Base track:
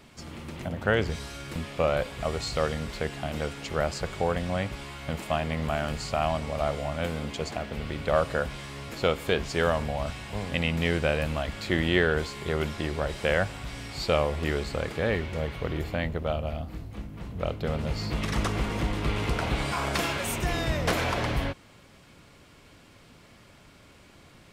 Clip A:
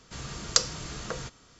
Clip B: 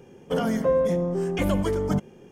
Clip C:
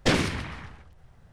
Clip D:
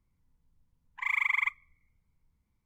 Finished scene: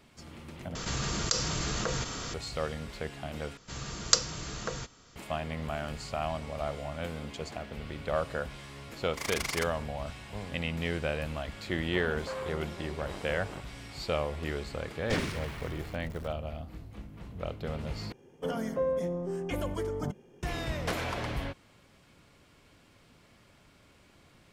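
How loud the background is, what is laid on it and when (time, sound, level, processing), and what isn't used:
base track -6.5 dB
0.75 replace with A -8 dB + fast leveller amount 70%
3.57 replace with A -0.5 dB
8.15 add D -7 dB + noise-modulated delay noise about 3200 Hz, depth 0.078 ms
11.62 add B -13.5 dB + core saturation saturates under 1200 Hz
15.04 add C -10 dB, fades 0.10 s + zero-crossing step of -33.5 dBFS
18.12 replace with B -8 dB + notch 200 Hz, Q 6.5

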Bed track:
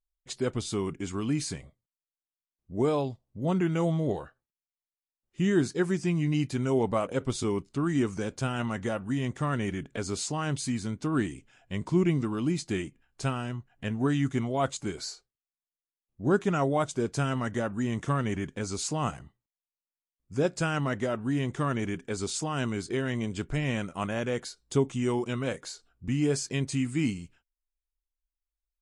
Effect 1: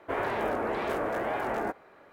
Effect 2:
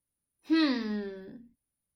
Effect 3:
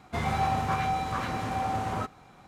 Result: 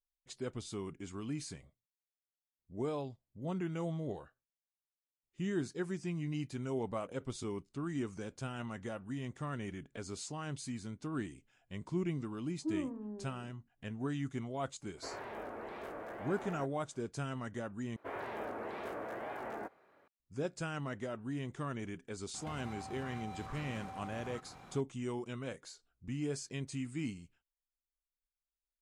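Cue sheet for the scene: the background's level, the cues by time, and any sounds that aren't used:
bed track -11 dB
12.15 add 2 -10.5 dB + inverse Chebyshev low-pass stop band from 2100 Hz
14.94 add 1 -14.5 dB
17.96 replace with 1 -11.5 dB + HPF 65 Hz
22.34 add 3 -1 dB + compressor 16:1, threshold -42 dBFS

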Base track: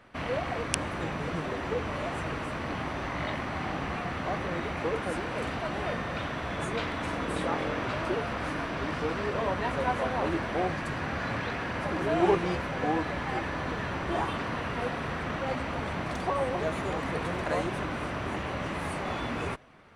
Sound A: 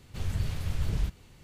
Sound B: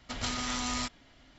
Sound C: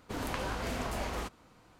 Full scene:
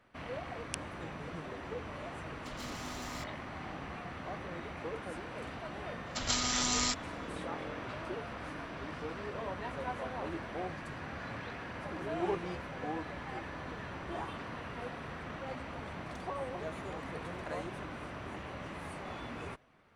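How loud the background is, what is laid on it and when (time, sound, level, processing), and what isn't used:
base track -10 dB
2.36 add B -6.5 dB + soft clip -36 dBFS
6.06 add B -0.5 dB + tone controls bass -2 dB, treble +7 dB
not used: A, C

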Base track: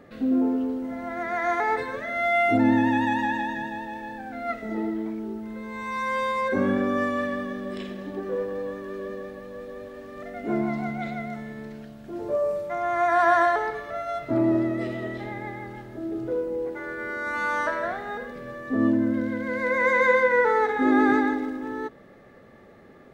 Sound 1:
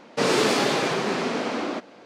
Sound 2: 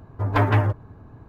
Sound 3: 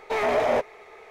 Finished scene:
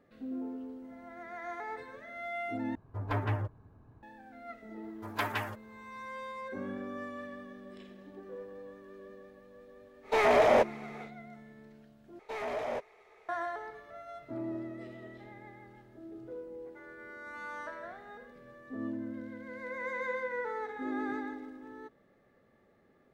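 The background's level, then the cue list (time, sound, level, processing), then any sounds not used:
base track -16 dB
2.75 replace with 2 -13 dB
4.83 add 2 -10.5 dB + tilt +4.5 dB/oct
10.02 add 3 -0.5 dB, fades 0.10 s
12.19 replace with 3 -13 dB
not used: 1

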